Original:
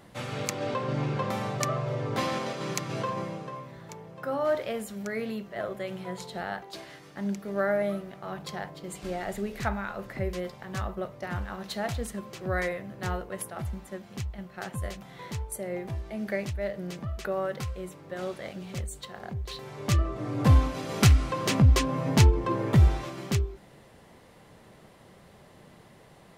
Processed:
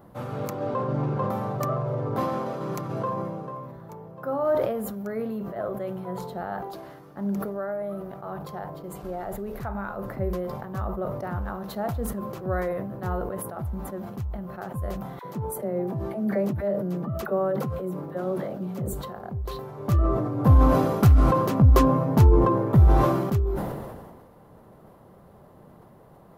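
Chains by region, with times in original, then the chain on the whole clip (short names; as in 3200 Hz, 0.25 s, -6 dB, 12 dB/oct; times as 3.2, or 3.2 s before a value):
7.4–9.75 compressor 3:1, threshold -30 dBFS + bell 230 Hz -4 dB 0.94 oct
15.19–18.93 HPF 130 Hz 24 dB/oct + low shelf 450 Hz +6 dB + dispersion lows, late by 48 ms, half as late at 820 Hz
whole clip: band shelf 4100 Hz -15 dB 2.7 oct; sustainer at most 35 dB/s; gain +2.5 dB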